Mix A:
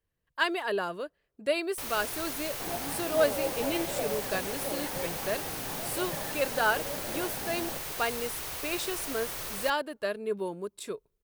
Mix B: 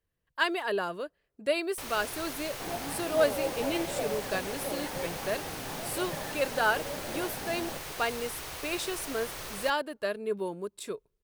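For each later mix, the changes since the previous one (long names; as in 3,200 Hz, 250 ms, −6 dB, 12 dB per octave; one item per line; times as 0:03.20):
first sound: add high-shelf EQ 9,500 Hz −8.5 dB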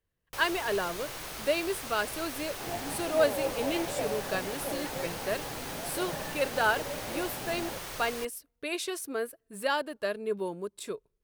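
first sound: entry −1.45 s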